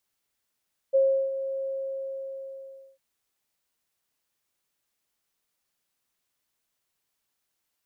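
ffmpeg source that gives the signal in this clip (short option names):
-f lavfi -i "aevalsrc='0.15*sin(2*PI*539*t)':d=2.05:s=44100,afade=t=in:d=0.022,afade=t=out:st=0.022:d=0.352:silence=0.266,afade=t=out:st=0.73:d=1.32"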